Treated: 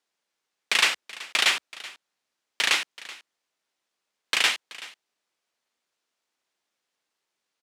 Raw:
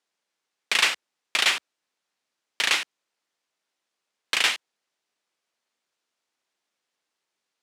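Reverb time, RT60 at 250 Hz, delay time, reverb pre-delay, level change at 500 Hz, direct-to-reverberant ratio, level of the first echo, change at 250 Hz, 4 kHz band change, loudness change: no reverb audible, no reverb audible, 379 ms, no reverb audible, 0.0 dB, no reverb audible, −18.5 dB, 0.0 dB, 0.0 dB, 0.0 dB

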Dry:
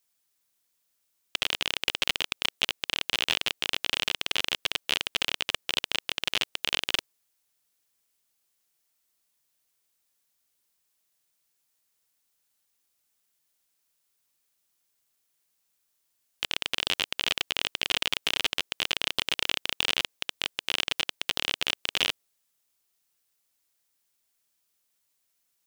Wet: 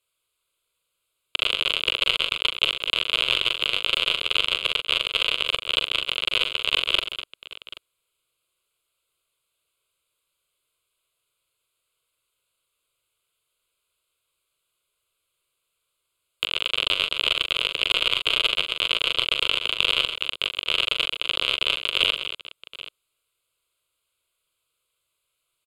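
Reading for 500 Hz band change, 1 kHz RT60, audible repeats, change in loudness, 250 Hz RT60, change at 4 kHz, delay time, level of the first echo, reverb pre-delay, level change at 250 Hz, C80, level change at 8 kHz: +6.0 dB, no reverb audible, 4, +6.0 dB, no reverb audible, +6.5 dB, 41 ms, −7.0 dB, no reverb audible, 0.0 dB, no reverb audible, −4.5 dB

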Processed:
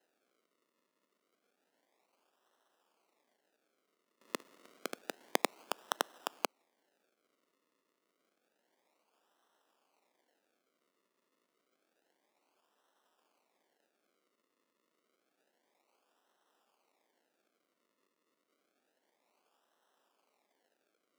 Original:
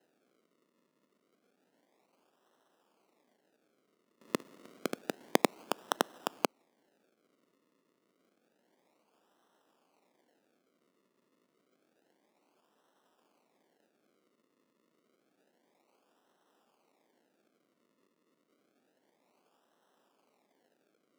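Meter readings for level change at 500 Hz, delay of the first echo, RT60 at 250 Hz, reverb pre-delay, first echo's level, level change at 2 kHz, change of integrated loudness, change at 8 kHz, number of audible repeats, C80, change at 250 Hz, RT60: −6.0 dB, no echo audible, no reverb audible, no reverb audible, no echo audible, −2.0 dB, −4.0 dB, −1.5 dB, no echo audible, no reverb audible, −9.5 dB, no reverb audible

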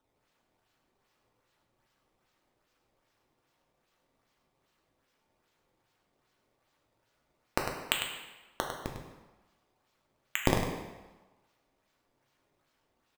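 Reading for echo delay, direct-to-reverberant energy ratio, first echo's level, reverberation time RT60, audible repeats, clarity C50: 101 ms, 0.0 dB, −8.0 dB, 1.2 s, 1, 3.0 dB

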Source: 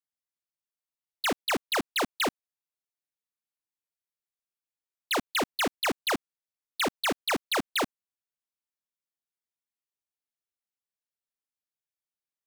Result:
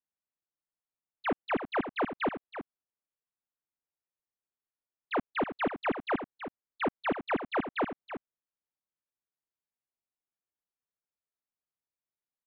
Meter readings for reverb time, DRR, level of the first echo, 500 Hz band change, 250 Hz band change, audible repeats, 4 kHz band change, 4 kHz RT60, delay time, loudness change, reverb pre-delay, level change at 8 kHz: no reverb audible, no reverb audible, −10.5 dB, 0.0 dB, 0.0 dB, 1, −16.5 dB, no reverb audible, 324 ms, −4.0 dB, no reverb audible, below −40 dB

